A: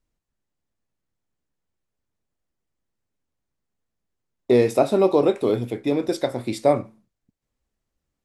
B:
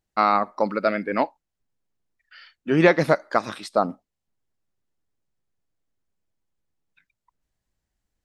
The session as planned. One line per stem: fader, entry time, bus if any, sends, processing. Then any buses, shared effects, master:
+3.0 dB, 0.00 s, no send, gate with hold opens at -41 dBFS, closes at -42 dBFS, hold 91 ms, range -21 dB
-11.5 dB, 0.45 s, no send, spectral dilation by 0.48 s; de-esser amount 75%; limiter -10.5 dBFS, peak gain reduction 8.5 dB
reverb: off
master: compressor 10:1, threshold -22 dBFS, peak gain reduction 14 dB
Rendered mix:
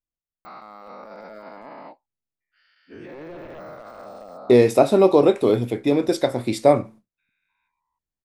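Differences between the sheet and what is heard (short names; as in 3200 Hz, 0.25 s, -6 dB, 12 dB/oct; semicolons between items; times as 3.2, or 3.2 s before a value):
stem B -11.5 dB -> -21.0 dB; master: missing compressor 10:1, threshold -22 dBFS, peak gain reduction 14 dB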